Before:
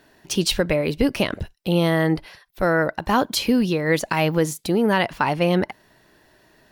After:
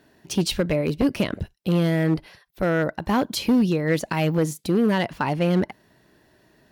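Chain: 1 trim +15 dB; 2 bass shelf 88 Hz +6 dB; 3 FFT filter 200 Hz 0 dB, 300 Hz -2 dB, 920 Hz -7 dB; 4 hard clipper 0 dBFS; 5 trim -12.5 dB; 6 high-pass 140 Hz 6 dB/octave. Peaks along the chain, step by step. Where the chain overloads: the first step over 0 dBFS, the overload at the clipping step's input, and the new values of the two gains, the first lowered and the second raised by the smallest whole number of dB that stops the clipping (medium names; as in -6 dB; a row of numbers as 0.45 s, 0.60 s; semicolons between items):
+7.5 dBFS, +10.0 dBFS, +8.5 dBFS, 0.0 dBFS, -12.5 dBFS, -9.5 dBFS; step 1, 8.5 dB; step 1 +6 dB, step 5 -3.5 dB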